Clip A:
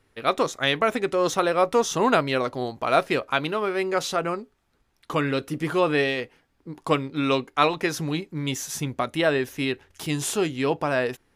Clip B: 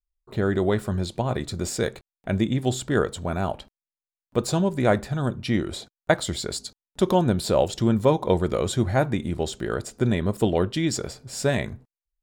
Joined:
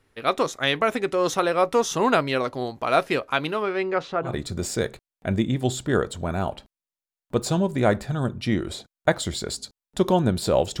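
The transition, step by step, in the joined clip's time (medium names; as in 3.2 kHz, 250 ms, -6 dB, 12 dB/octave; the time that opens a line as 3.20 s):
clip A
3.62–4.35 s: low-pass 6.8 kHz -> 1.1 kHz
4.28 s: go over to clip B from 1.30 s, crossfade 0.14 s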